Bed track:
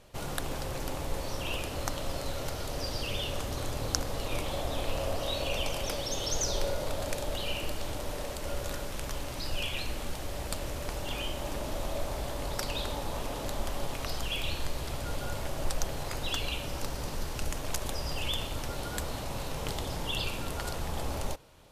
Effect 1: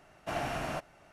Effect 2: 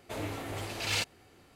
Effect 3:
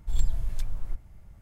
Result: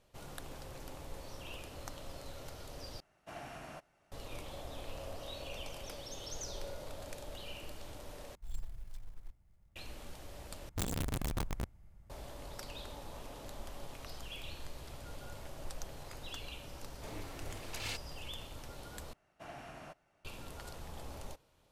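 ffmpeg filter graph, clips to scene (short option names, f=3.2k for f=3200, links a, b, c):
-filter_complex "[1:a]asplit=2[a][b];[3:a]asplit=2[c][d];[0:a]volume=-12.5dB[e];[a]highshelf=f=6.2k:g=4[f];[c]acrusher=bits=7:mode=log:mix=0:aa=0.000001[g];[d]aeval=exprs='(mod(13.3*val(0)+1,2)-1)/13.3':c=same[h];[e]asplit=5[i][j][k][l][m];[i]atrim=end=3.004[n];[f]atrim=end=1.12,asetpts=PTS-STARTPTS,volume=-13dB[o];[j]atrim=start=4.116:end=8.354[p];[g]atrim=end=1.41,asetpts=PTS-STARTPTS,volume=-17.5dB[q];[k]atrim=start=9.756:end=10.694[r];[h]atrim=end=1.41,asetpts=PTS-STARTPTS,volume=-9dB[s];[l]atrim=start=12.096:end=19.134[t];[b]atrim=end=1.12,asetpts=PTS-STARTPTS,volume=-14.5dB[u];[m]atrim=start=20.246[v];[2:a]atrim=end=1.55,asetpts=PTS-STARTPTS,volume=-10.5dB,afade=t=in:d=0.004:c=hsin,afade=t=out:st=1.546:d=0.004:c=hsin,adelay=16930[w];[n][o]acrossfade=d=0.004:c1=hsin:c2=hsin[x];[x][p]acrossfade=d=0.004:c1=hsin:c2=hsin[y];[y][q]acrossfade=d=0.004:c1=hsin:c2=hsin[z];[z][r]acrossfade=d=0.004:c1=hsin:c2=hsin[aa];[aa][s]acrossfade=d=0.004:c1=hsin:c2=hsin[ab];[ab][t]acrossfade=d=0.004:c1=hsin:c2=hsin[ac];[ac][u]acrossfade=d=0.004:c1=hsin:c2=hsin[ad];[ad][v]acrossfade=d=0.004:c1=hsin:c2=hsin[ae];[ae][w]amix=inputs=2:normalize=0"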